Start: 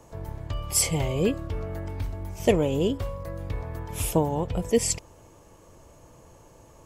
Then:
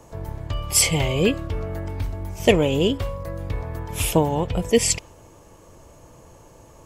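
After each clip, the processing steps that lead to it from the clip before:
dynamic equaliser 2,800 Hz, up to +7 dB, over −46 dBFS, Q 0.91
level +4 dB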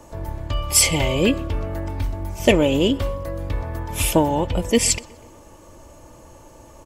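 comb filter 3.4 ms, depth 39%
in parallel at −11 dB: soft clipping −14.5 dBFS, distortion −12 dB
on the sum: feedback echo with a low-pass in the loop 123 ms, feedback 57%, low-pass 3,800 Hz, level −23 dB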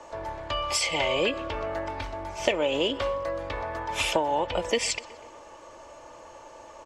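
three-way crossover with the lows and the highs turned down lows −19 dB, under 450 Hz, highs −22 dB, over 7,800 Hz
downward compressor 6 to 1, threshold −25 dBFS, peak gain reduction 11.5 dB
high-shelf EQ 6,700 Hz −9.5 dB
level +4 dB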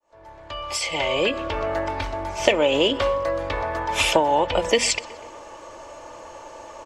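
fade in at the beginning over 1.72 s
mains-hum notches 60/120/180/240 Hz
level +6.5 dB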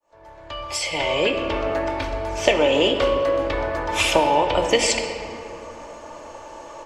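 convolution reverb RT60 2.9 s, pre-delay 7 ms, DRR 4.5 dB

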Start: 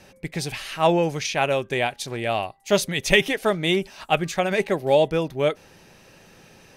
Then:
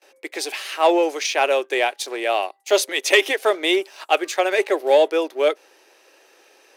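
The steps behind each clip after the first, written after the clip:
leveller curve on the samples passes 1
noise gate with hold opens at −44 dBFS
Butterworth high-pass 320 Hz 48 dB per octave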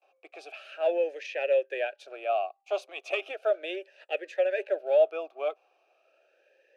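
formant filter swept between two vowels a-e 0.36 Hz
level −2 dB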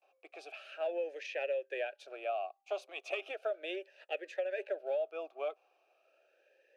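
downward compressor 6 to 1, threshold −28 dBFS, peak gain reduction 11 dB
level −4 dB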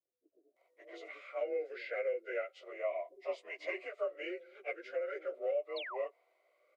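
partials spread apart or drawn together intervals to 92%
sound drawn into the spectrogram fall, 0:05.20–0:05.41, 710–4,600 Hz −45 dBFS
multiband delay without the direct sound lows, highs 560 ms, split 280 Hz
level +1.5 dB

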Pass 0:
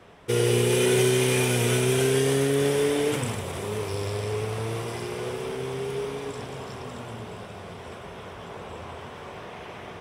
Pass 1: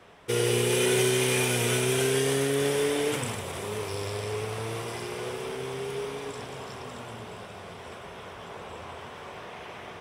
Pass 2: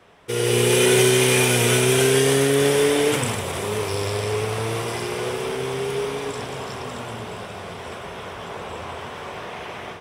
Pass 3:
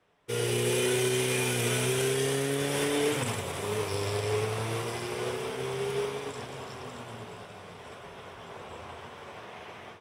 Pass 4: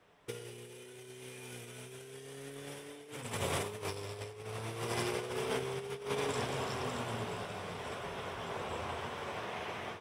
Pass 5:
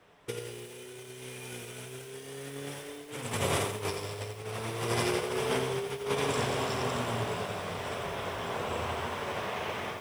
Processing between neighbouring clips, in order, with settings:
low-shelf EQ 460 Hz −5.5 dB
automatic gain control gain up to 8 dB
flanger 0.26 Hz, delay 6.5 ms, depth 3 ms, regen −62%; brickwall limiter −18 dBFS, peak gain reduction 8.5 dB; expander for the loud parts 1.5 to 1, over −49 dBFS
compressor whose output falls as the input rises −36 dBFS, ratio −0.5; level −2.5 dB
feedback echo at a low word length 86 ms, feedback 35%, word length 9 bits, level −6 dB; level +5 dB

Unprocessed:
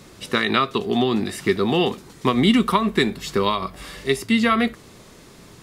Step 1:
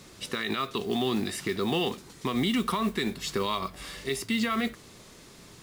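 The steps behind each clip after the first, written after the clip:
parametric band 5,900 Hz +4.5 dB 2.9 octaves
brickwall limiter −12 dBFS, peak gain reduction 11.5 dB
noise that follows the level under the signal 24 dB
level −6 dB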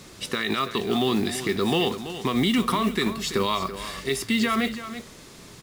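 single-tap delay 332 ms −12 dB
level +4.5 dB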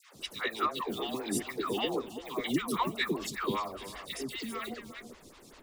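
harmonic and percussive parts rebalanced harmonic −16 dB
all-pass dispersion lows, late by 148 ms, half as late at 810 Hz
phaser with staggered stages 5.1 Hz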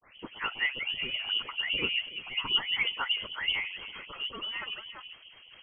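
low-shelf EQ 440 Hz +3.5 dB
voice inversion scrambler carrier 3,200 Hz

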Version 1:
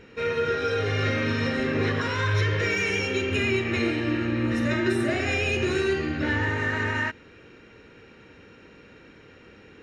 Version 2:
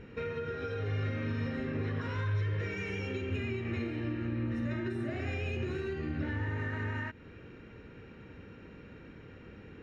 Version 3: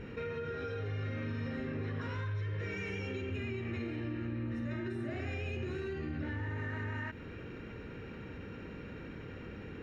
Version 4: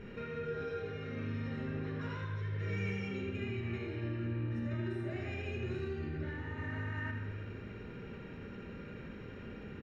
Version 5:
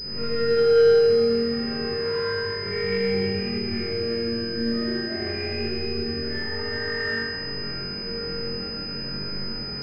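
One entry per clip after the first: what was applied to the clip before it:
high-shelf EQ 4,000 Hz −8.5 dB; downward compressor 6 to 1, threshold −33 dBFS, peak gain reduction 13 dB; bass and treble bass +8 dB, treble −3 dB; level −3 dB
envelope flattener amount 50%; level −6 dB
single-tap delay 78 ms −8 dB; convolution reverb RT60 1.5 s, pre-delay 5 ms, DRR 3 dB; level −4 dB
flutter between parallel walls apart 3.7 metres, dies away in 0.69 s; four-comb reverb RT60 2 s, combs from 28 ms, DRR −4 dB; switching amplifier with a slow clock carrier 5,000 Hz; level +3.5 dB

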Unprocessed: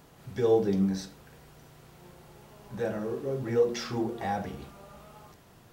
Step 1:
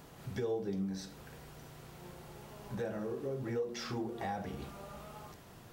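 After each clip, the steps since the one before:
downward compressor 3 to 1, threshold −39 dBFS, peak gain reduction 15 dB
level +1.5 dB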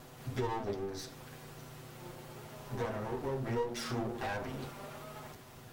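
lower of the sound and its delayed copy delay 7.9 ms
level +3.5 dB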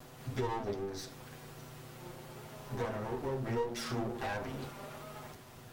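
pitch vibrato 0.5 Hz 14 cents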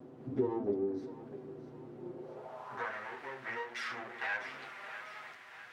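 feedback echo with a high-pass in the loop 648 ms, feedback 54%, high-pass 420 Hz, level −12 dB
band-pass filter sweep 310 Hz → 1,900 Hz, 0:02.13–0:02.95
level +9 dB

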